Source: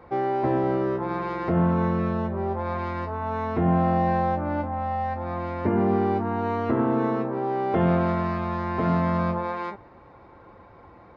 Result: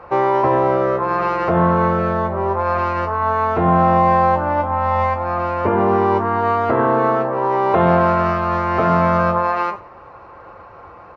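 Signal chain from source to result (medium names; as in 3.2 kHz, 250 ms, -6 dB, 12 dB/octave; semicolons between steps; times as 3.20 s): graphic EQ 250/500/1000 Hz -5/+5/+7 dB; formant shift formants +2 st; speakerphone echo 100 ms, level -25 dB; Schroeder reverb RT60 0.41 s, combs from 31 ms, DRR 17 dB; trim +4.5 dB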